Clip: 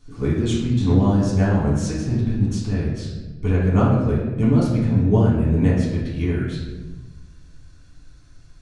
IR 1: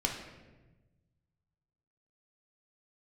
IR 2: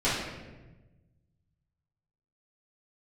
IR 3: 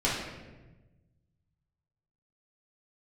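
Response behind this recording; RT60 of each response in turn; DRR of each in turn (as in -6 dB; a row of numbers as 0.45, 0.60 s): 3; 1.2, 1.2, 1.2 s; 0.5, -12.0, -7.5 dB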